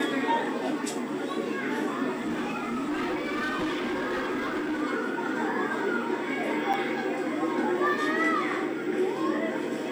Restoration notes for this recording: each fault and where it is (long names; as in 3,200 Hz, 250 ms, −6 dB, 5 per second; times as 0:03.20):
0:02.15–0:04.83: clipping −26 dBFS
0:06.73–0:06.74: drop-out 6.9 ms